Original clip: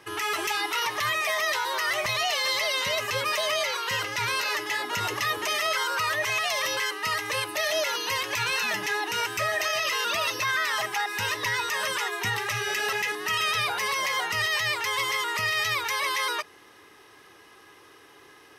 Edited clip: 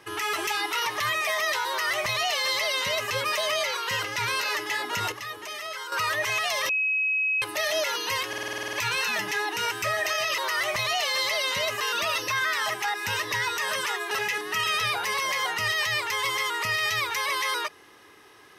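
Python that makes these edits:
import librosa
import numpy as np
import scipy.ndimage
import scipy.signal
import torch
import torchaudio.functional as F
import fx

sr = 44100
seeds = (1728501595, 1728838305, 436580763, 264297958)

y = fx.edit(x, sr, fx.duplicate(start_s=1.68, length_s=1.43, to_s=9.93),
    fx.clip_gain(start_s=5.12, length_s=0.8, db=-9.0),
    fx.bleep(start_s=6.69, length_s=0.73, hz=2550.0, db=-22.0),
    fx.stutter(start_s=8.28, slice_s=0.05, count=10),
    fx.cut(start_s=12.23, length_s=0.62), tone=tone)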